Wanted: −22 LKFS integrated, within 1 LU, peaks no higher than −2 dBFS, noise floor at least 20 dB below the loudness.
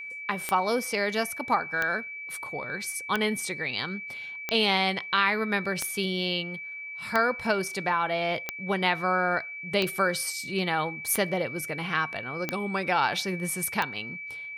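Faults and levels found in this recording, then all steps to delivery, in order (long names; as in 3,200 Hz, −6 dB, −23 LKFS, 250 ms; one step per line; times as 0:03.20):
number of clicks 11; interfering tone 2,300 Hz; level of the tone −36 dBFS; integrated loudness −28.0 LKFS; sample peak −10.0 dBFS; target loudness −22.0 LKFS
→ click removal
notch filter 2,300 Hz, Q 30
level +6 dB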